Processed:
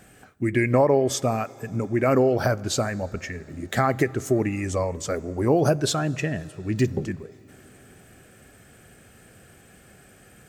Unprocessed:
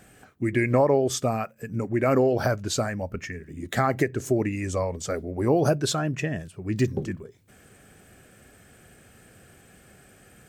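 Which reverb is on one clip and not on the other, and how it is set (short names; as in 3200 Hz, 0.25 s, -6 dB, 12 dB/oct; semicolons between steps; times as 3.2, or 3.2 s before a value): plate-style reverb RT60 4.4 s, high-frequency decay 0.8×, DRR 20 dB; gain +1.5 dB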